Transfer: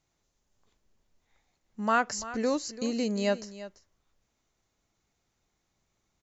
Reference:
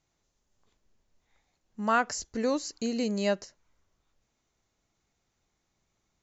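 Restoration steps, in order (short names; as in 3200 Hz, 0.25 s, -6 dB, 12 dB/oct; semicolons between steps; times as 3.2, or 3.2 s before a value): inverse comb 0.339 s -15 dB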